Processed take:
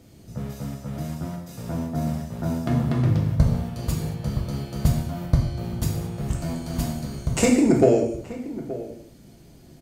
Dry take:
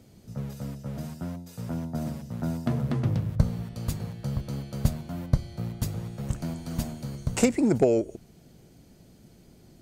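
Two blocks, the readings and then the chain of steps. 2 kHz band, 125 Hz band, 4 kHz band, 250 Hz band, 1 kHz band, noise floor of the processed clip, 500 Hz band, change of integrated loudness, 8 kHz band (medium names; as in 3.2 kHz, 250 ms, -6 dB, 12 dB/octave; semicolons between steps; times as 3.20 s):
+5.5 dB, +5.0 dB, +5.0 dB, +5.0 dB, +6.0 dB, -49 dBFS, +4.5 dB, +4.5 dB, +5.0 dB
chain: echo from a far wall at 150 m, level -15 dB; gated-style reverb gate 250 ms falling, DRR -0.5 dB; trim +2 dB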